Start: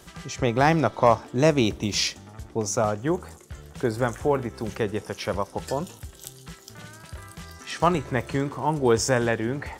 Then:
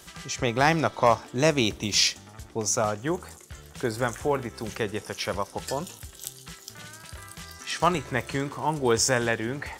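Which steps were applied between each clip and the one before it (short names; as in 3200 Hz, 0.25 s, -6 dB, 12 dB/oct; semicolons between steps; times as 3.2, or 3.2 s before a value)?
tilt shelf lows -4 dB, about 1300 Hz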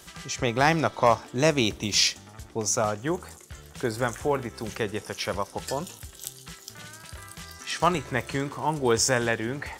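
nothing audible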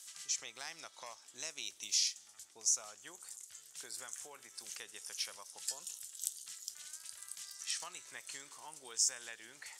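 compressor 3:1, threshold -27 dBFS, peak gain reduction 10 dB; band-pass 8000 Hz, Q 1.3; gain +1 dB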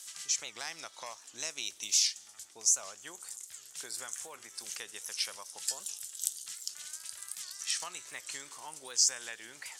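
record warp 78 rpm, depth 160 cents; gain +5.5 dB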